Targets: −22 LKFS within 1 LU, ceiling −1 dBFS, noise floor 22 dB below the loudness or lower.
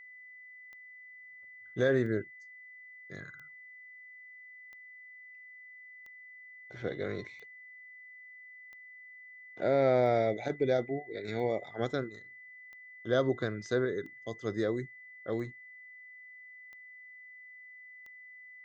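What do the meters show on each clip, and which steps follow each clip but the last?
number of clicks 14; interfering tone 2,000 Hz; level of the tone −49 dBFS; integrated loudness −32.5 LKFS; sample peak −16.0 dBFS; target loudness −22.0 LKFS
→ click removal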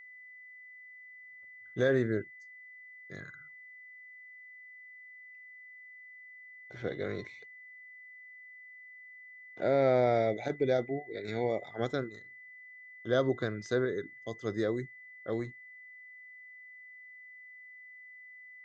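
number of clicks 0; interfering tone 2,000 Hz; level of the tone −49 dBFS
→ notch filter 2,000 Hz, Q 30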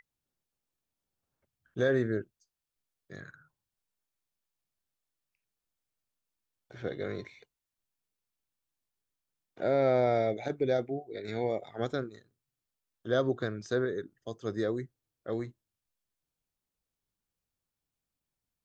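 interfering tone none found; integrated loudness −32.0 LKFS; sample peak −16.5 dBFS; target loudness −22.0 LKFS
→ level +10 dB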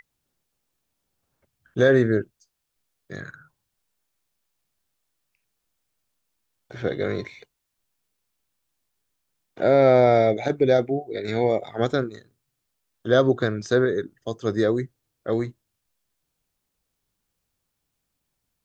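integrated loudness −22.0 LKFS; sample peak −6.5 dBFS; background noise floor −79 dBFS

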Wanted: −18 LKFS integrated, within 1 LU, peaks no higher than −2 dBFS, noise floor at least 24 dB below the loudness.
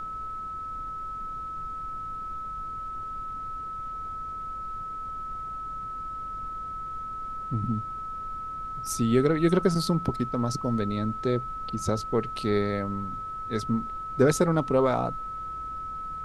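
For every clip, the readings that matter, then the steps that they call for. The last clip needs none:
interfering tone 1,300 Hz; level of the tone −33 dBFS; background noise floor −36 dBFS; target noise floor −54 dBFS; integrated loudness −29.5 LKFS; sample peak −8.0 dBFS; target loudness −18.0 LKFS
→ notch filter 1,300 Hz, Q 30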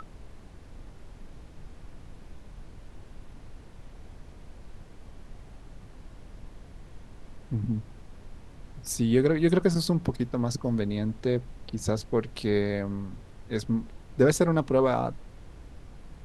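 interfering tone none found; background noise floor −49 dBFS; target noise floor −52 dBFS
→ noise reduction from a noise print 6 dB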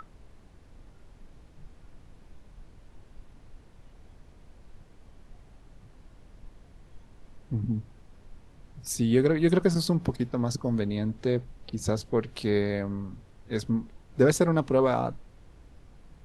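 background noise floor −55 dBFS; integrated loudness −27.5 LKFS; sample peak −8.5 dBFS; target loudness −18.0 LKFS
→ level +9.5 dB
brickwall limiter −2 dBFS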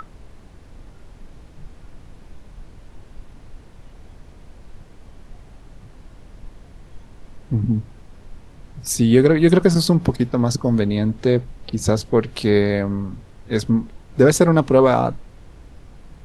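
integrated loudness −18.0 LKFS; sample peak −2.0 dBFS; background noise floor −45 dBFS

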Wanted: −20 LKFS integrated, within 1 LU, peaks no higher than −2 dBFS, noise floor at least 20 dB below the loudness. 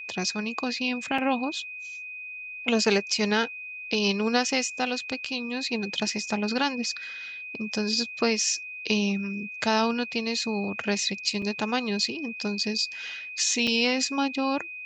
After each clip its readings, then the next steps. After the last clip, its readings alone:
number of dropouts 3; longest dropout 4.1 ms; interfering tone 2,500 Hz; level of the tone −36 dBFS; integrated loudness −27.0 LKFS; sample peak −9.0 dBFS; target loudness −20.0 LKFS
→ repair the gap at 0:01.18/0:11.42/0:13.67, 4.1 ms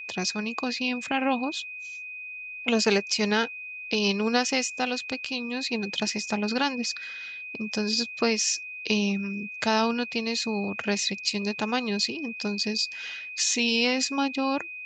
number of dropouts 0; interfering tone 2,500 Hz; level of the tone −36 dBFS
→ notch filter 2,500 Hz, Q 30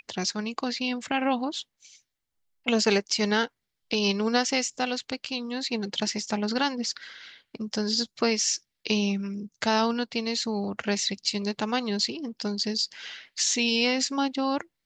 interfering tone none found; integrated loudness −27.0 LKFS; sample peak −9.5 dBFS; target loudness −20.0 LKFS
→ level +7 dB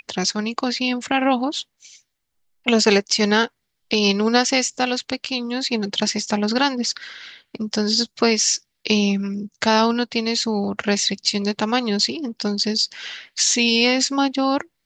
integrated loudness −20.0 LKFS; sample peak −2.5 dBFS; background noise floor −75 dBFS

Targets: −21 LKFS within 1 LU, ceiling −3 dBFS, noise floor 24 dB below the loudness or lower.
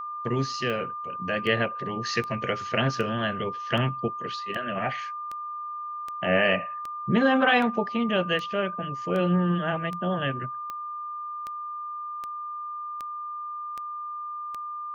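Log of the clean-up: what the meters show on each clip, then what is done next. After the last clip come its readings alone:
number of clicks 19; interfering tone 1,200 Hz; level of the tone −32 dBFS; integrated loudness −28.0 LKFS; sample peak −9.5 dBFS; target loudness −21.0 LKFS
→ click removal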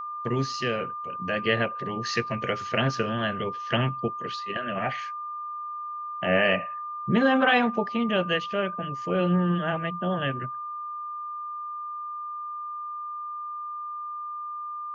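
number of clicks 0; interfering tone 1,200 Hz; level of the tone −32 dBFS
→ notch filter 1,200 Hz, Q 30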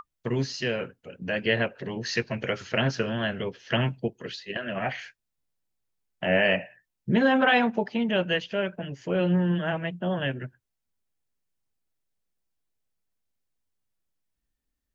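interfering tone none found; integrated loudness −27.0 LKFS; sample peak −10.0 dBFS; target loudness −21.0 LKFS
→ level +6 dB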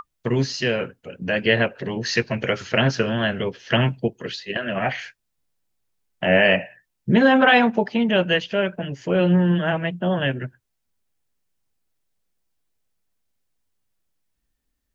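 integrated loudness −21.0 LKFS; sample peak −4.0 dBFS; background noise floor −76 dBFS

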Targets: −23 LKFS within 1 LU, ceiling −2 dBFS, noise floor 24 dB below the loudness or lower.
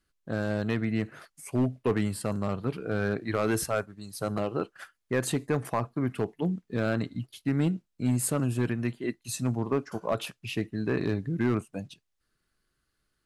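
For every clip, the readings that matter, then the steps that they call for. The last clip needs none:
share of clipped samples 0.6%; peaks flattened at −18.5 dBFS; integrated loudness −30.5 LKFS; sample peak −18.5 dBFS; target loudness −23.0 LKFS
→ clipped peaks rebuilt −18.5 dBFS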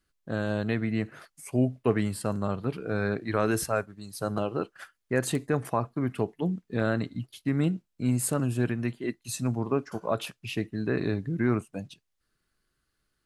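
share of clipped samples 0.0%; integrated loudness −29.5 LKFS; sample peak −10.0 dBFS; target loudness −23.0 LKFS
→ level +6.5 dB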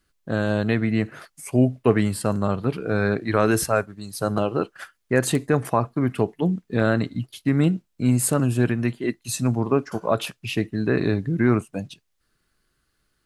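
integrated loudness −23.0 LKFS; sample peak −3.5 dBFS; background noise floor −72 dBFS

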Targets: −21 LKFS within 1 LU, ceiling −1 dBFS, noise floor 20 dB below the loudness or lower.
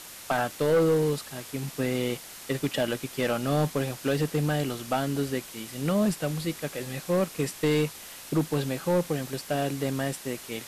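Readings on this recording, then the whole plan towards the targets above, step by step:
share of clipped samples 1.2%; peaks flattened at −18.0 dBFS; background noise floor −44 dBFS; target noise floor −49 dBFS; integrated loudness −28.5 LKFS; sample peak −18.0 dBFS; target loudness −21.0 LKFS
→ clipped peaks rebuilt −18 dBFS
broadband denoise 6 dB, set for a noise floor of −44 dBFS
level +7.5 dB

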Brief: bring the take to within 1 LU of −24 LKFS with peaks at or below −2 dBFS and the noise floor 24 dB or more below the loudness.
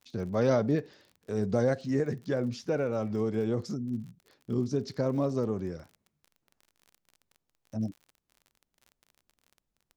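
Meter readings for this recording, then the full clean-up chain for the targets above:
crackle rate 35 per second; integrated loudness −31.0 LKFS; sample peak −14.5 dBFS; target loudness −24.0 LKFS
→ click removal
level +7 dB

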